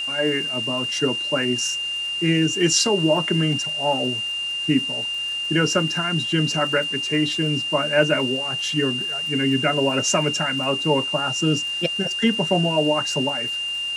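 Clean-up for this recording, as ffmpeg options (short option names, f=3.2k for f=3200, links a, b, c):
-af "adeclick=t=4,bandreject=f=2.8k:w=30,afwtdn=0.0079"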